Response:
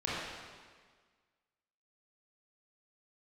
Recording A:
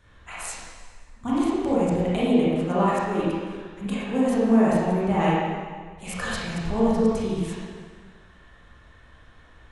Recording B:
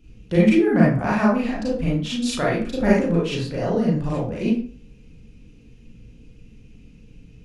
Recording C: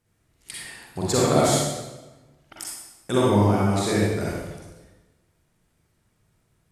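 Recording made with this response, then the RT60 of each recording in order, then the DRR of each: A; 1.6, 0.45, 1.1 s; -8.5, -6.5, -6.0 dB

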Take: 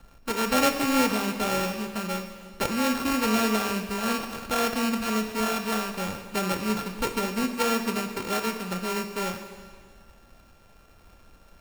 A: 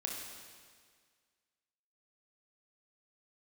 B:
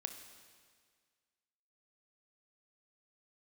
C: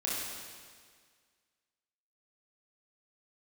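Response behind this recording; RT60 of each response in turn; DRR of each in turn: B; 1.8, 1.8, 1.8 s; -1.0, 6.0, -6.5 dB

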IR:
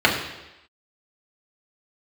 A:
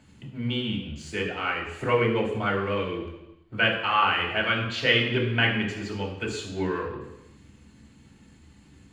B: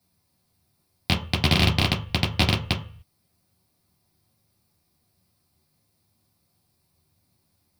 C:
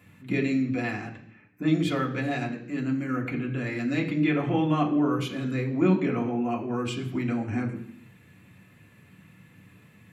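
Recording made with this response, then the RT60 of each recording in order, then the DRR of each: A; 0.95, 0.40, 0.60 s; -3.0, -3.5, -2.5 dB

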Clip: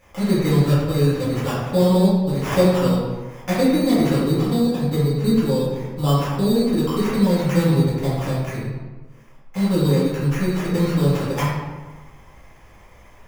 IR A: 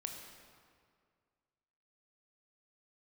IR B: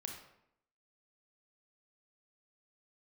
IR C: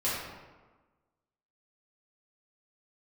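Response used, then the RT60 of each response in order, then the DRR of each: C; 2.0, 0.75, 1.3 s; 2.5, 1.5, -10.5 dB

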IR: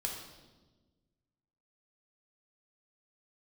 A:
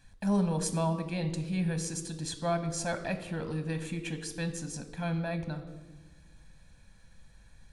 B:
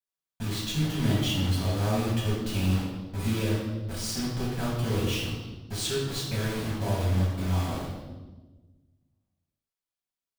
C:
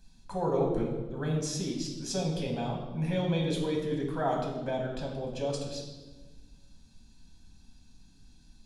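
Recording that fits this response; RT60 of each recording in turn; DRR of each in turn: C; 1.3, 1.3, 1.3 s; 8.5, -7.5, -0.5 dB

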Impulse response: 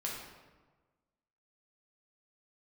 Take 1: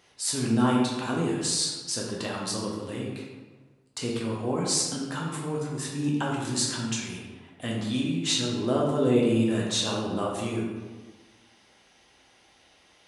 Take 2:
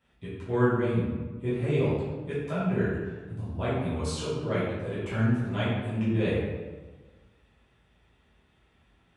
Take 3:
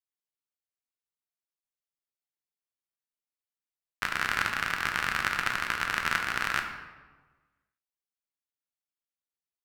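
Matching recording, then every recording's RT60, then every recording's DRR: 1; 1.3, 1.3, 1.3 s; -3.5, -12.0, 3.5 dB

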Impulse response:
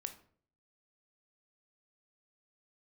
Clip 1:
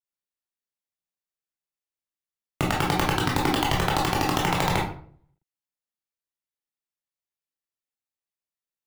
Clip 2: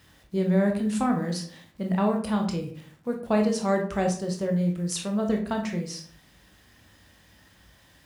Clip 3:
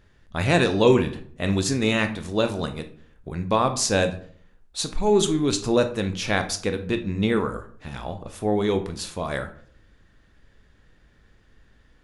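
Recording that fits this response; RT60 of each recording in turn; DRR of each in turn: 3; 0.50, 0.55, 0.55 s; -3.5, 2.0, 7.5 dB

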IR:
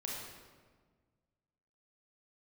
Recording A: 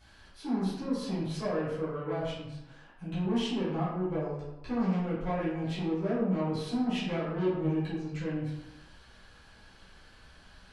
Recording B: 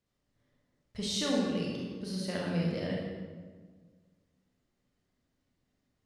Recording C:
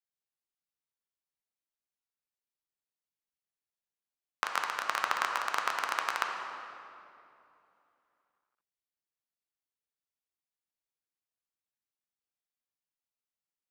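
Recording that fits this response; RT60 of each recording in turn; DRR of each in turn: B; 0.95, 1.5, 2.7 s; -12.5, -3.5, 1.5 dB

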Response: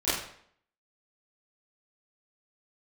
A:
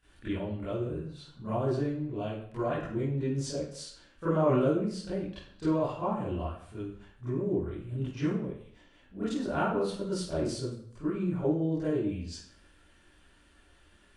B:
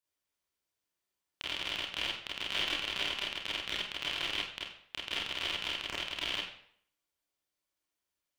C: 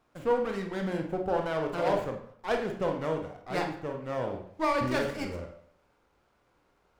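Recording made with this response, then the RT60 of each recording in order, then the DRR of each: A; 0.65, 0.65, 0.65 s; -15.0, -6.5, 2.5 dB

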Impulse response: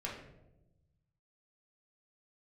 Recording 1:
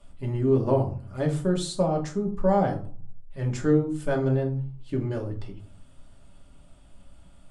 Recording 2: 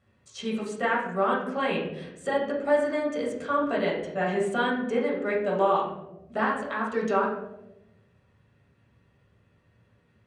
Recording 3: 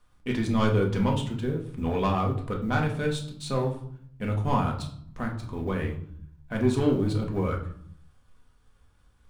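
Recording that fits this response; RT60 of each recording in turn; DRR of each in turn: 2; 0.45, 1.0, 0.65 s; 0.5, -4.5, 0.0 dB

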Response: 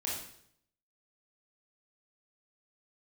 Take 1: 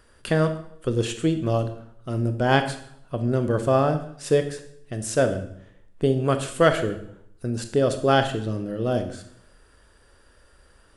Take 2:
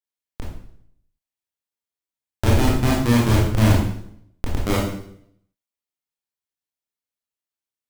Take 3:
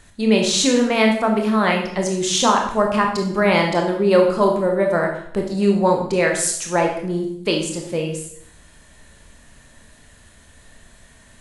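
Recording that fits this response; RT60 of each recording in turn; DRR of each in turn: 2; 0.70, 0.70, 0.70 s; 7.5, -5.0, 1.5 dB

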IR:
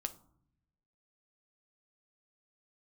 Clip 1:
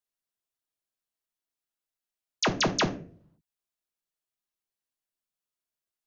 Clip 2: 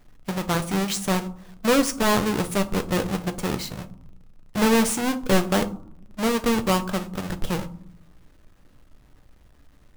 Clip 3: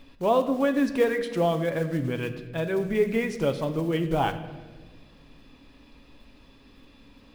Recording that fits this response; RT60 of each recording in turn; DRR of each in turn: 2; 0.50, 0.65, 1.3 s; 4.0, 7.5, 7.0 dB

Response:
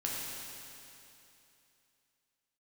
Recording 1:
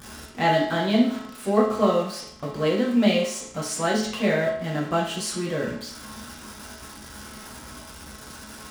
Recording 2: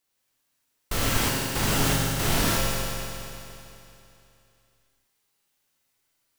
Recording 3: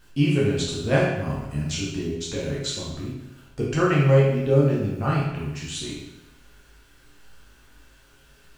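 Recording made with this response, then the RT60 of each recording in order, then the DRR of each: 2; 0.65, 2.9, 0.95 s; -5.5, -4.5, -6.0 dB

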